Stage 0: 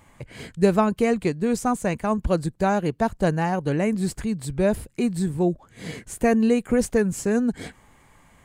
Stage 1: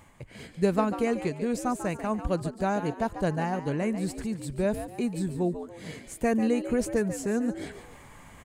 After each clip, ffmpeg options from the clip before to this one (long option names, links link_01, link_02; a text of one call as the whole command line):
ffmpeg -i in.wav -filter_complex "[0:a]areverse,acompressor=mode=upward:threshold=-32dB:ratio=2.5,areverse,asplit=5[link_01][link_02][link_03][link_04][link_05];[link_02]adelay=143,afreqshift=81,volume=-11dB[link_06];[link_03]adelay=286,afreqshift=162,volume=-20.1dB[link_07];[link_04]adelay=429,afreqshift=243,volume=-29.2dB[link_08];[link_05]adelay=572,afreqshift=324,volume=-38.4dB[link_09];[link_01][link_06][link_07][link_08][link_09]amix=inputs=5:normalize=0,volume=-6dB" out.wav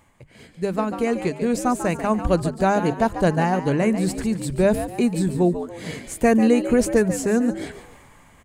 ffmpeg -i in.wav -af "bandreject=frequency=50:width_type=h:width=6,bandreject=frequency=100:width_type=h:width=6,bandreject=frequency=150:width_type=h:width=6,bandreject=frequency=200:width_type=h:width=6,dynaudnorm=framelen=150:gausssize=13:maxgain=13dB,volume=-2.5dB" out.wav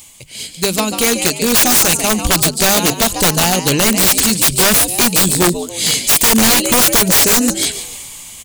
ffmpeg -i in.wav -af "aexciter=amount=7.9:drive=7.9:freq=2600,aeval=exprs='(mod(3.16*val(0)+1,2)-1)/3.16':channel_layout=same,volume=5.5dB" out.wav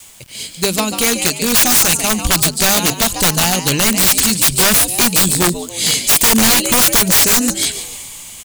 ffmpeg -i in.wav -af "adynamicequalizer=threshold=0.0398:dfrequency=440:dqfactor=0.81:tfrequency=440:tqfactor=0.81:attack=5:release=100:ratio=0.375:range=2.5:mode=cutabove:tftype=bell,acrusher=bits=6:mix=0:aa=0.000001" out.wav